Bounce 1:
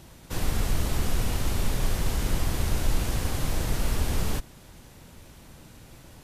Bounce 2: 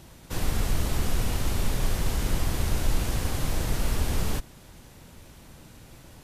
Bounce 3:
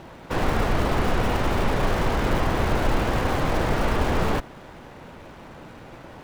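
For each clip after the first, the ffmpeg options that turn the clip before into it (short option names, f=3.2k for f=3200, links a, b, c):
-af anull
-filter_complex "[0:a]asplit=2[a][b];[b]highpass=f=720:p=1,volume=18dB,asoftclip=type=tanh:threshold=-11.5dB[c];[a][c]amix=inputs=2:normalize=0,lowpass=f=1.2k:p=1,volume=-6dB,lowpass=f=2.2k:p=1,asplit=2[d][e];[e]acrusher=bits=6:dc=4:mix=0:aa=0.000001,volume=-9.5dB[f];[d][f]amix=inputs=2:normalize=0,volume=3dB"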